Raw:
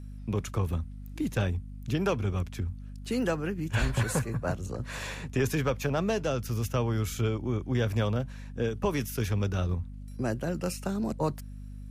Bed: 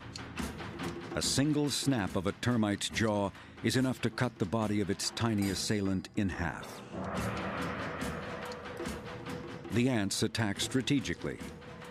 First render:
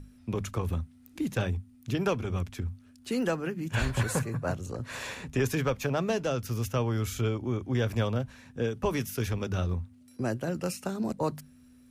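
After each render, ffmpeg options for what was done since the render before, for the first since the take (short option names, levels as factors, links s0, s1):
-af "bandreject=f=50:t=h:w=6,bandreject=f=100:t=h:w=6,bandreject=f=150:t=h:w=6,bandreject=f=200:t=h:w=6"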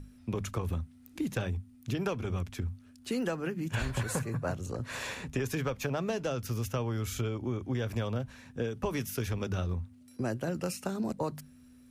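-af "acompressor=threshold=0.0398:ratio=6"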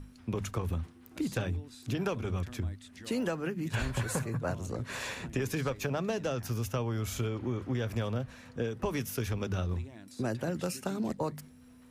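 -filter_complex "[1:a]volume=0.106[s0];[0:a][s0]amix=inputs=2:normalize=0"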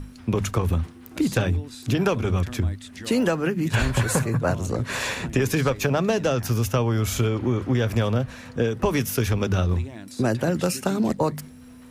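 -af "volume=3.35"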